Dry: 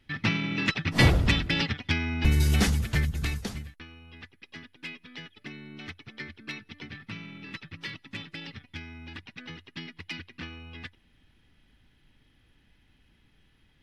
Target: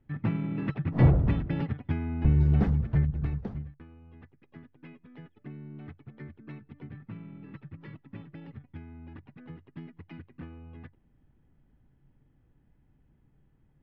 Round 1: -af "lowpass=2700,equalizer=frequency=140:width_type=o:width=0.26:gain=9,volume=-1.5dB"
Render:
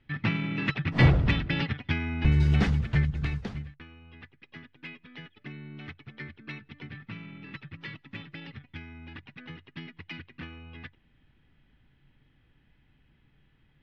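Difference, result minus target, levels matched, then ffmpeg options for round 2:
2,000 Hz band +13.0 dB
-af "lowpass=870,equalizer=frequency=140:width_type=o:width=0.26:gain=9,volume=-1.5dB"

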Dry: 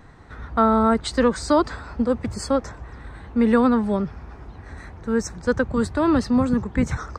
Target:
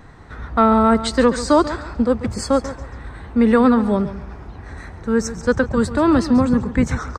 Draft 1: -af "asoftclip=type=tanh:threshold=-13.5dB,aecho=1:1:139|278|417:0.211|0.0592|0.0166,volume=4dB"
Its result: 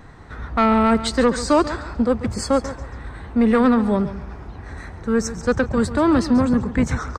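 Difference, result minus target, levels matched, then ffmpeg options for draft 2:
soft clipping: distortion +15 dB
-af "asoftclip=type=tanh:threshold=-3.5dB,aecho=1:1:139|278|417:0.211|0.0592|0.0166,volume=4dB"

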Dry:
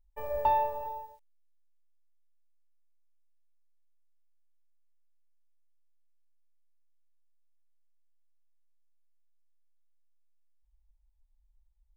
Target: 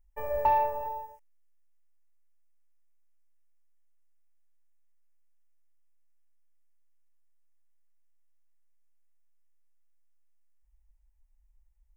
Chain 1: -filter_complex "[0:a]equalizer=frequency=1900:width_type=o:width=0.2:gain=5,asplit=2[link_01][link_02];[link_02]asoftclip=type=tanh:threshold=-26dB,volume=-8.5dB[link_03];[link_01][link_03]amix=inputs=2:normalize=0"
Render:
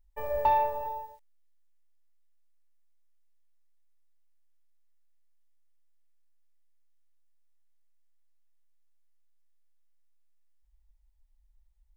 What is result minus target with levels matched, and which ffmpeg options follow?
4,000 Hz band +6.5 dB
-filter_complex "[0:a]asuperstop=centerf=3900:order=4:qfactor=1.6,equalizer=frequency=1900:width_type=o:width=0.2:gain=5,asplit=2[link_01][link_02];[link_02]asoftclip=type=tanh:threshold=-26dB,volume=-8.5dB[link_03];[link_01][link_03]amix=inputs=2:normalize=0"

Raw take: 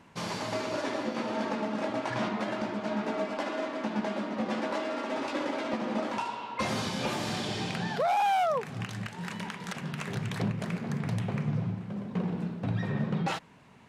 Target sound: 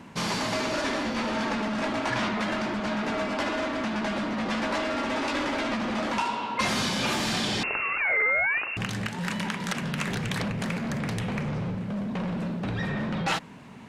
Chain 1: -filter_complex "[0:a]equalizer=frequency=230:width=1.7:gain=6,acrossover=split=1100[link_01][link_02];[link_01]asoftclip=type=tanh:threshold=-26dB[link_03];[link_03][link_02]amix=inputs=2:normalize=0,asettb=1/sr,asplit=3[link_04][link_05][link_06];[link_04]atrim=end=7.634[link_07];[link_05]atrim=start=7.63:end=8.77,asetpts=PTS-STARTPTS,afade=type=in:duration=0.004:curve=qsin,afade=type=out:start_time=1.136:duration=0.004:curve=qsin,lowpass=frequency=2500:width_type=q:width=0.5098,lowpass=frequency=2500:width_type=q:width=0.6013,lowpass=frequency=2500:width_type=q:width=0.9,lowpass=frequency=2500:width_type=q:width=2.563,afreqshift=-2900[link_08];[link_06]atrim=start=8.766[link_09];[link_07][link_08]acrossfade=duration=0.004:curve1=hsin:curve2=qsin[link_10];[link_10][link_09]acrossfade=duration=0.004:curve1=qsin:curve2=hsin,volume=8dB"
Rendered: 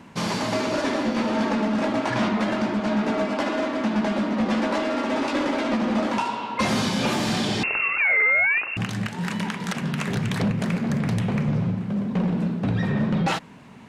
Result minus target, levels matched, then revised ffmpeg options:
soft clipping: distortion −8 dB
-filter_complex "[0:a]equalizer=frequency=230:width=1.7:gain=6,acrossover=split=1100[link_01][link_02];[link_01]asoftclip=type=tanh:threshold=-36.5dB[link_03];[link_03][link_02]amix=inputs=2:normalize=0,asettb=1/sr,asplit=3[link_04][link_05][link_06];[link_04]atrim=end=7.634[link_07];[link_05]atrim=start=7.63:end=8.77,asetpts=PTS-STARTPTS,afade=type=in:duration=0.004:curve=qsin,afade=type=out:start_time=1.136:duration=0.004:curve=qsin,lowpass=frequency=2500:width_type=q:width=0.5098,lowpass=frequency=2500:width_type=q:width=0.6013,lowpass=frequency=2500:width_type=q:width=0.9,lowpass=frequency=2500:width_type=q:width=2.563,afreqshift=-2900[link_08];[link_06]atrim=start=8.766[link_09];[link_07][link_08]acrossfade=duration=0.004:curve1=hsin:curve2=qsin[link_10];[link_10][link_09]acrossfade=duration=0.004:curve1=qsin:curve2=hsin,volume=8dB"

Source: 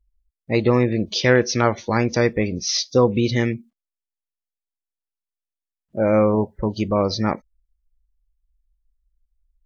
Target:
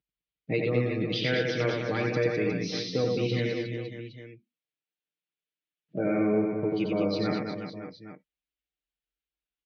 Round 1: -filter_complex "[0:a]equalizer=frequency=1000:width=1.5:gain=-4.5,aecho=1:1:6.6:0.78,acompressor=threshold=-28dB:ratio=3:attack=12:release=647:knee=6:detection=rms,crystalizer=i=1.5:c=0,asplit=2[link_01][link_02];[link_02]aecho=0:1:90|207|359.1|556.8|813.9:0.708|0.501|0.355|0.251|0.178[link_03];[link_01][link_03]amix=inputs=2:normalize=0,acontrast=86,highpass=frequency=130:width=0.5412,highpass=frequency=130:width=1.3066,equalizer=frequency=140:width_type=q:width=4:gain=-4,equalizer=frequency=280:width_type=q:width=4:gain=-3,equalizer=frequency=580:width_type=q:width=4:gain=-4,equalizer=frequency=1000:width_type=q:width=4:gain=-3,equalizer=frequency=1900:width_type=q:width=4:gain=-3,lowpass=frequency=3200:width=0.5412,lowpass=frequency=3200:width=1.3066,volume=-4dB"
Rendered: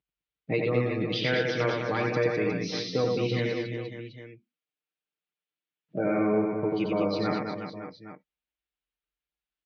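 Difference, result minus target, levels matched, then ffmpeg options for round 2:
1,000 Hz band +4.0 dB
-filter_complex "[0:a]equalizer=frequency=1000:width=1.5:gain=-13.5,aecho=1:1:6.6:0.78,acompressor=threshold=-28dB:ratio=3:attack=12:release=647:knee=6:detection=rms,crystalizer=i=1.5:c=0,asplit=2[link_01][link_02];[link_02]aecho=0:1:90|207|359.1|556.8|813.9:0.708|0.501|0.355|0.251|0.178[link_03];[link_01][link_03]amix=inputs=2:normalize=0,acontrast=86,highpass=frequency=130:width=0.5412,highpass=frequency=130:width=1.3066,equalizer=frequency=140:width_type=q:width=4:gain=-4,equalizer=frequency=280:width_type=q:width=4:gain=-3,equalizer=frequency=580:width_type=q:width=4:gain=-4,equalizer=frequency=1000:width_type=q:width=4:gain=-3,equalizer=frequency=1900:width_type=q:width=4:gain=-3,lowpass=frequency=3200:width=0.5412,lowpass=frequency=3200:width=1.3066,volume=-4dB"

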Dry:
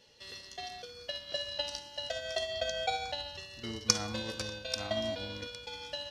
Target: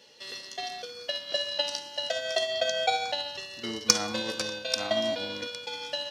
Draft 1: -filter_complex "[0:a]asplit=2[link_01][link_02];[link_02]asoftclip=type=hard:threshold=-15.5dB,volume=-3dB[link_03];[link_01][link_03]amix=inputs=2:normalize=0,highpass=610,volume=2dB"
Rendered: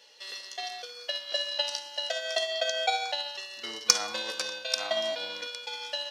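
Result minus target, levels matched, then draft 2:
250 Hz band −12.5 dB
-filter_complex "[0:a]asplit=2[link_01][link_02];[link_02]asoftclip=type=hard:threshold=-15.5dB,volume=-3dB[link_03];[link_01][link_03]amix=inputs=2:normalize=0,highpass=210,volume=2dB"

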